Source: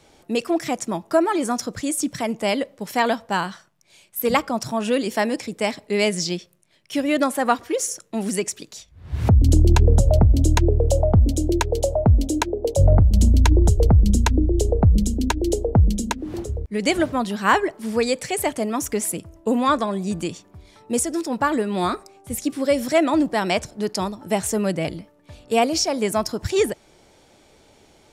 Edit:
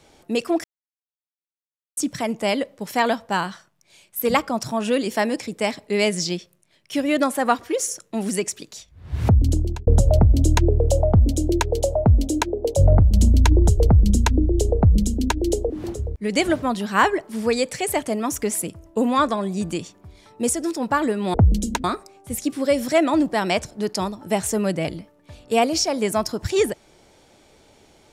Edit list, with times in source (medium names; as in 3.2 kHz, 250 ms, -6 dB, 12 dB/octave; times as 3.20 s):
0.64–1.97 s: mute
9.28–9.87 s: fade out
15.70–16.20 s: move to 21.84 s